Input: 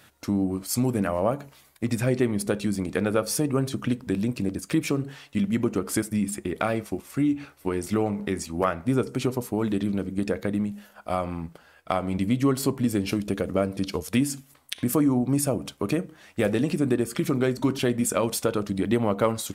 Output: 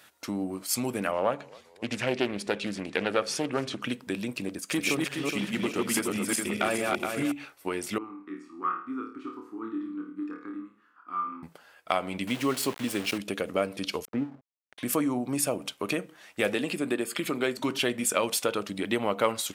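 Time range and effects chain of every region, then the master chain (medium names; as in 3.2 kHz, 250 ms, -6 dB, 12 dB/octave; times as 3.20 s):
1.11–3.82 s: low-pass 6.3 kHz + frequency-shifting echo 269 ms, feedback 63%, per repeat -55 Hz, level -23.5 dB + loudspeaker Doppler distortion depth 0.29 ms
4.47–7.32 s: backward echo that repeats 210 ms, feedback 56%, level -1.5 dB + hard clipper -15.5 dBFS
7.98–11.43 s: two resonant band-passes 600 Hz, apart 2 oct + flutter echo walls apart 4.6 m, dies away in 0.47 s
12.27–13.18 s: high-pass 54 Hz 6 dB/octave + small samples zeroed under -33.5 dBFS
14.05–14.78 s: low-pass 1.3 kHz 24 dB/octave + hysteresis with a dead band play -37.5 dBFS
16.55–17.57 s: high-pass 150 Hz + band-stop 5.8 kHz, Q 5.6
whole clip: high-pass 510 Hz 6 dB/octave; dynamic bell 2.8 kHz, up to +6 dB, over -51 dBFS, Q 1.4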